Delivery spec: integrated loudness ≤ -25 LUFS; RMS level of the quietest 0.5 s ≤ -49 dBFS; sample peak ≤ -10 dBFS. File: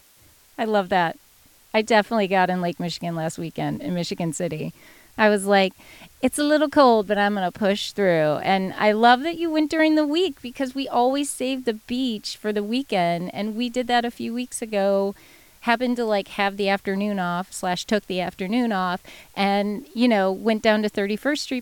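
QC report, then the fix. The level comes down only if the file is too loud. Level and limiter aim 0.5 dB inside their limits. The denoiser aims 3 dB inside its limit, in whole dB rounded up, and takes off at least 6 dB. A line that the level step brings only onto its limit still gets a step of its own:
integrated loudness -22.5 LUFS: fail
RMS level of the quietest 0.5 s -55 dBFS: pass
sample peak -4.5 dBFS: fail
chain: trim -3 dB; peak limiter -10.5 dBFS

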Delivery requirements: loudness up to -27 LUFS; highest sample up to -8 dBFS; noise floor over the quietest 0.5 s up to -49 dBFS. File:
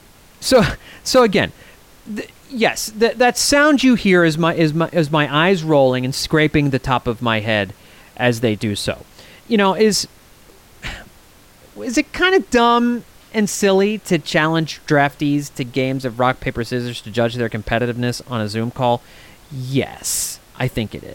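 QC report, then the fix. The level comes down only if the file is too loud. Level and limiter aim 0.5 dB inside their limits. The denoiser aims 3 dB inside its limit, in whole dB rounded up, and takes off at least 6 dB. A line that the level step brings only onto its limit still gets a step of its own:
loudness -17.5 LUFS: fail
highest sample -3.5 dBFS: fail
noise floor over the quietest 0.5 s -47 dBFS: fail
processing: trim -10 dB

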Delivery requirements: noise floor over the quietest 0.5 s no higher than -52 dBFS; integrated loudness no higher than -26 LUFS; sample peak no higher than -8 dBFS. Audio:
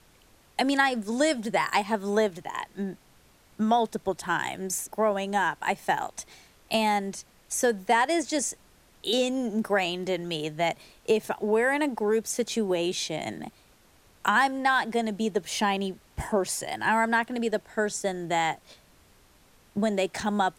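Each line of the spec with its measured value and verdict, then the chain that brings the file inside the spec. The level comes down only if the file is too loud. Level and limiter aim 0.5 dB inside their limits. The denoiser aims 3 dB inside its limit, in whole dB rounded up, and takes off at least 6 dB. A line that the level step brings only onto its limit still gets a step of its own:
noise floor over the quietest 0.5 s -59 dBFS: pass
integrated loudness -27.0 LUFS: pass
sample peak -9.0 dBFS: pass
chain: none needed

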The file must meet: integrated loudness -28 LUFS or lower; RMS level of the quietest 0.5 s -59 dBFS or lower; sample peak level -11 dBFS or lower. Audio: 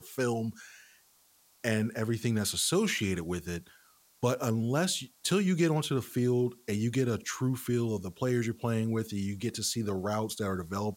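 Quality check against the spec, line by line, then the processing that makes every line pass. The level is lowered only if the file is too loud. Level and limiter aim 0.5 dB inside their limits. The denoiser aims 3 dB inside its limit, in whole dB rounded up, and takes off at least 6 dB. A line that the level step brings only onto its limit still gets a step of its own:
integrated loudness -31.0 LUFS: pass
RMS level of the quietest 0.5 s -65 dBFS: pass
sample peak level -13.5 dBFS: pass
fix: none needed

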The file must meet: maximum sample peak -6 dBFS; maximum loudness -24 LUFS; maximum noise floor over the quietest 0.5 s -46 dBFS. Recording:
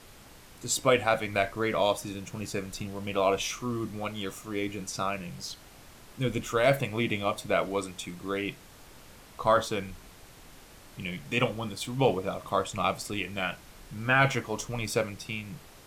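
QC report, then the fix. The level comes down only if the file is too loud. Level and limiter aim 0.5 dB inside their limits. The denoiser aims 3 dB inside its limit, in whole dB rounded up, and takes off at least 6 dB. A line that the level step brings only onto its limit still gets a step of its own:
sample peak -11.5 dBFS: pass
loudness -30.0 LUFS: pass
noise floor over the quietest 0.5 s -51 dBFS: pass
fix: none needed

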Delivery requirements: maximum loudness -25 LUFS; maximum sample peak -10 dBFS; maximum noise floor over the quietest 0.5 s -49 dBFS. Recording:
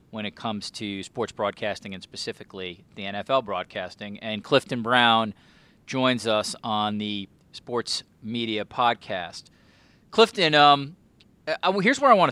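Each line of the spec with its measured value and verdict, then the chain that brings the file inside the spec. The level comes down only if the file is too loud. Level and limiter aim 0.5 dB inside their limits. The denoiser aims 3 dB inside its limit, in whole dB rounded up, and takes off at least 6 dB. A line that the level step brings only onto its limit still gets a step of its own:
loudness -24.0 LUFS: fail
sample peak -4.0 dBFS: fail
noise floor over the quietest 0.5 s -58 dBFS: pass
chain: trim -1.5 dB; peak limiter -10.5 dBFS

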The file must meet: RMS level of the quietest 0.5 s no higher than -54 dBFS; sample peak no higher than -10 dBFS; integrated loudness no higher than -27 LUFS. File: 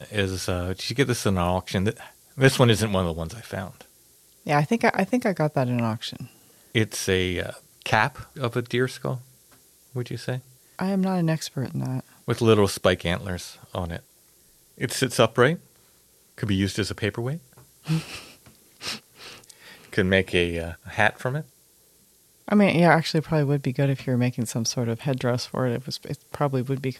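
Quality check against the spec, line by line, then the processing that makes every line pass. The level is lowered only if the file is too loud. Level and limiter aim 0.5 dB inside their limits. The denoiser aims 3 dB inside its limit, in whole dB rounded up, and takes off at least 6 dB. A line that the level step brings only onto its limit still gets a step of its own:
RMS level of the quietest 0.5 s -59 dBFS: pass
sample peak -4.0 dBFS: fail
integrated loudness -24.5 LUFS: fail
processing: trim -3 dB; peak limiter -10.5 dBFS

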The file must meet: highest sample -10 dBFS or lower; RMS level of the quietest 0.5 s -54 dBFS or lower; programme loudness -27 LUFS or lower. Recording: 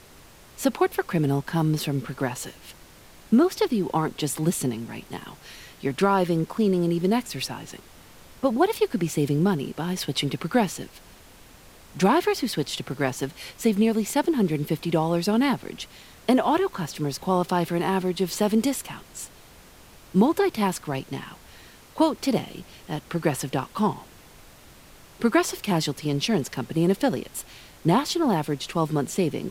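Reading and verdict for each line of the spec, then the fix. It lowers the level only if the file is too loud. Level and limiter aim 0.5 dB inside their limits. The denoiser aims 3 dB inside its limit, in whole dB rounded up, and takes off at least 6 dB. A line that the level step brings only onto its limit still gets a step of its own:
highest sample -7.5 dBFS: fail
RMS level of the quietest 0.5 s -49 dBFS: fail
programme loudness -25.0 LUFS: fail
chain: noise reduction 6 dB, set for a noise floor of -49 dBFS; trim -2.5 dB; peak limiter -10.5 dBFS

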